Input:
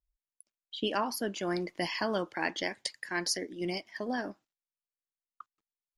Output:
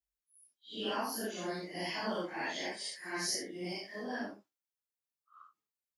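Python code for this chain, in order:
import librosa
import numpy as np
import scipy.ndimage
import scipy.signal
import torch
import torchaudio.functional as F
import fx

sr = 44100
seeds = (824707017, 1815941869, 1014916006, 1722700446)

y = fx.phase_scramble(x, sr, seeds[0], window_ms=200)
y = scipy.signal.sosfilt(scipy.signal.butter(2, 83.0, 'highpass', fs=sr, output='sos'), y)
y = fx.high_shelf(y, sr, hz=7300.0, db=5.5)
y = F.gain(torch.from_numpy(y), -4.5).numpy()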